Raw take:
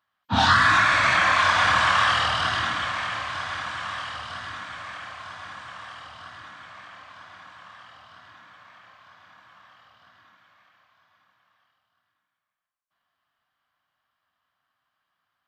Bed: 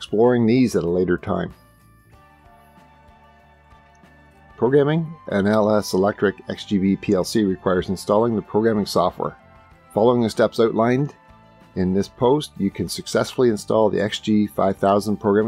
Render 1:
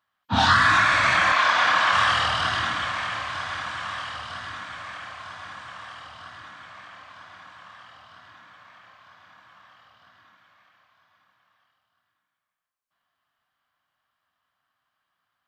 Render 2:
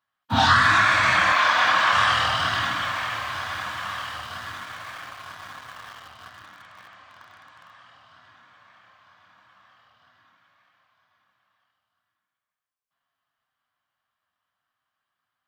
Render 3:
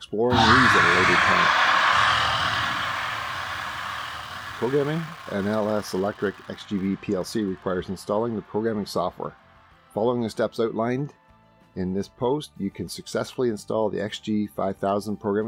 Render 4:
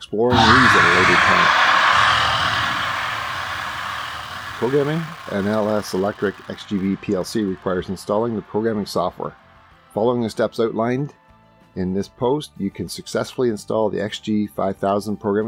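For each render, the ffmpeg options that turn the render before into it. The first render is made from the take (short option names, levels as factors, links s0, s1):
-filter_complex "[0:a]asettb=1/sr,asplit=3[s0][s1][s2];[s0]atrim=end=1.324[s3];[s1]atrim=start=1.32:end=1.93,asetpts=PTS-STARTPTS,afade=t=in:d=0.004:c=qsin,afade=t=out:st=0.606:d=0.004:c=qsin,highpass=250,lowpass=6600[s4];[s2]atrim=start=1.926[s5];[s3][s4]acrossfade=d=0.004:c1=hsin:c2=qsin[s6];[s6][s5]acrossfade=d=0.004:c1=qsin:c2=hsin"
-filter_complex "[0:a]flanger=delay=7.2:depth=2.6:regen=-52:speed=0.38:shape=sinusoidal,asplit=2[s0][s1];[s1]aeval=exprs='val(0)*gte(abs(val(0)),0.01)':c=same,volume=0.708[s2];[s0][s2]amix=inputs=2:normalize=0"
-filter_complex "[1:a]volume=0.447[s0];[0:a][s0]amix=inputs=2:normalize=0"
-af "volume=1.68,alimiter=limit=0.794:level=0:latency=1"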